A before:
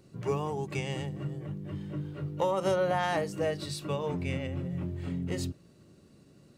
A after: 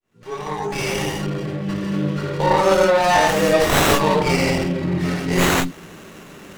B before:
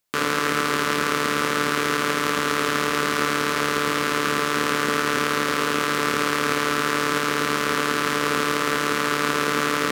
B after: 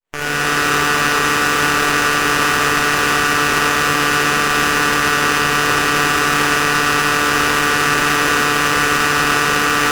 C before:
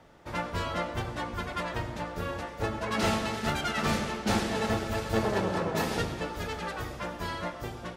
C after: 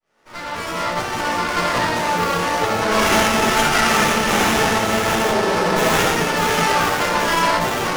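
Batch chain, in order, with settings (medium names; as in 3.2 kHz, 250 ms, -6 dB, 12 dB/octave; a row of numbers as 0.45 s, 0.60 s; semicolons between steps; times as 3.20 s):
fade-in on the opening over 2.65 s; in parallel at -1 dB: gain riding within 5 dB 2 s; on the sum: high-pass 190 Hz 12 dB/octave; compression 10:1, threshold -25 dBFS; tilt shelf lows -8.5 dB, about 1.5 kHz; spectral gate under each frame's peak -20 dB strong; saturation -13.5 dBFS; dynamic bell 1.9 kHz, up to -5 dB, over -44 dBFS, Q 0.88; gated-style reverb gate 210 ms flat, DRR -7.5 dB; sliding maximum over 9 samples; peak normalisation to -3 dBFS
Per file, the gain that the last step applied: +12.5 dB, +12.0 dB, +10.5 dB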